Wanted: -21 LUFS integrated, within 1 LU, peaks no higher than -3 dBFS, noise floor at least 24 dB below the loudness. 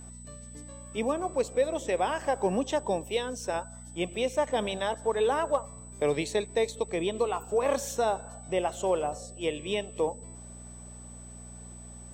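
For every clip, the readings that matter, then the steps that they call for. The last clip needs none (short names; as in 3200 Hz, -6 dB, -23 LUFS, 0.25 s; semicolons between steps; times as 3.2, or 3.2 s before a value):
hum 60 Hz; harmonics up to 240 Hz; hum level -45 dBFS; steady tone 8000 Hz; tone level -48 dBFS; loudness -30.0 LUFS; peak -15.0 dBFS; loudness target -21.0 LUFS
-> de-hum 60 Hz, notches 4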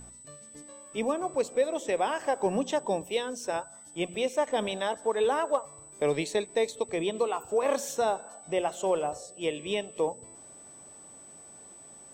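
hum none; steady tone 8000 Hz; tone level -48 dBFS
-> notch 8000 Hz, Q 30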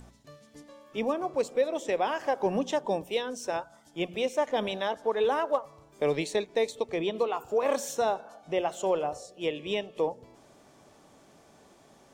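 steady tone none; loudness -30.0 LUFS; peak -15.5 dBFS; loudness target -21.0 LUFS
-> gain +9 dB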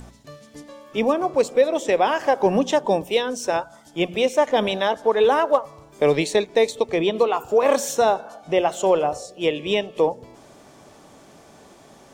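loudness -21.0 LUFS; peak -6.5 dBFS; noise floor -50 dBFS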